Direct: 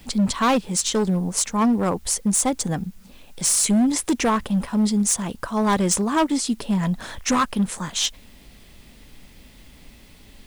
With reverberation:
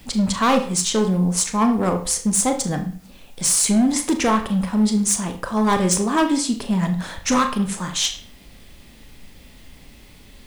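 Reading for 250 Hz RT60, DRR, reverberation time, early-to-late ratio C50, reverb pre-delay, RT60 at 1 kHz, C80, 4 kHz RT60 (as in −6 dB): 0.50 s, 5.5 dB, 0.45 s, 10.5 dB, 27 ms, 0.45 s, 14.0 dB, 0.40 s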